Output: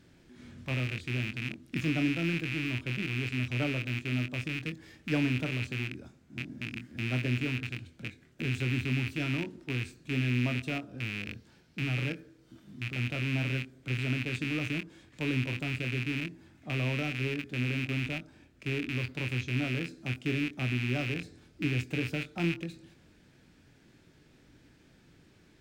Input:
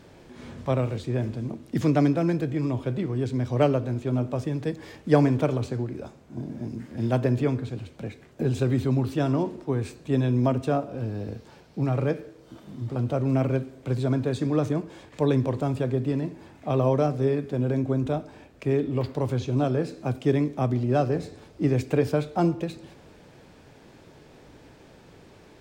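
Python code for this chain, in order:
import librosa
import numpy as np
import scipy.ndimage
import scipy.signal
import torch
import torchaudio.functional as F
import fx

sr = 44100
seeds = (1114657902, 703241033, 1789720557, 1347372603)

y = fx.rattle_buzz(x, sr, strikes_db=-30.0, level_db=-16.0)
y = fx.band_shelf(y, sr, hz=680.0, db=-9.0, octaves=1.7)
y = fx.doubler(y, sr, ms=24.0, db=-10)
y = F.gain(torch.from_numpy(y), -8.0).numpy()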